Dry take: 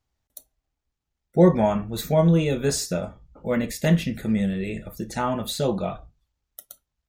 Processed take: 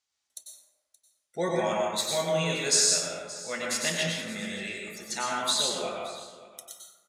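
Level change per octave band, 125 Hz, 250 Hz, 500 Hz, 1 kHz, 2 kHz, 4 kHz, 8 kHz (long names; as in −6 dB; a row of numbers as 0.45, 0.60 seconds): −15.5, −14.5, −7.0, −2.5, +2.5, +7.0, +8.0 decibels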